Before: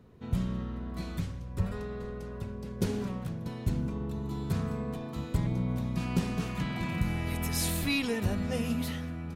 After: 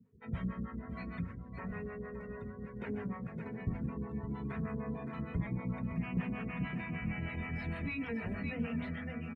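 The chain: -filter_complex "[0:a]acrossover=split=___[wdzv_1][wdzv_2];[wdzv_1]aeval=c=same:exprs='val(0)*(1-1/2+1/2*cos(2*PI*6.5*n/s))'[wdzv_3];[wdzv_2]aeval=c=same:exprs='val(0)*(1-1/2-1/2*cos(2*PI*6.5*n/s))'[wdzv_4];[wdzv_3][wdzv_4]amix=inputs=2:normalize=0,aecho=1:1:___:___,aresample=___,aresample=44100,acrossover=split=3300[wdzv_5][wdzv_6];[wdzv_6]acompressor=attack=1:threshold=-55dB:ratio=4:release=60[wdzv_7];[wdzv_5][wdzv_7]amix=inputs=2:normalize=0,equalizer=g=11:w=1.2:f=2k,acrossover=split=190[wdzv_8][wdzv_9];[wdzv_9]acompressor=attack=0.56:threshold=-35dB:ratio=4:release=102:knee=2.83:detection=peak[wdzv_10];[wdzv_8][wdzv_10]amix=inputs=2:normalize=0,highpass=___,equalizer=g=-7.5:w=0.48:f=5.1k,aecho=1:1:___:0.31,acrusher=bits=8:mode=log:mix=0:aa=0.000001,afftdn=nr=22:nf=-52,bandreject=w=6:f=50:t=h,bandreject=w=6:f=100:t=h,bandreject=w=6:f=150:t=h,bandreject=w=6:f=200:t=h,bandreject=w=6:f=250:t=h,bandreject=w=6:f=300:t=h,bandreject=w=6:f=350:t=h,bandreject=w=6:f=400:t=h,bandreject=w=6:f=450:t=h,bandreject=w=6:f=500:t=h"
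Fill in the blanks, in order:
450, 562, 0.335, 22050, 66, 4.4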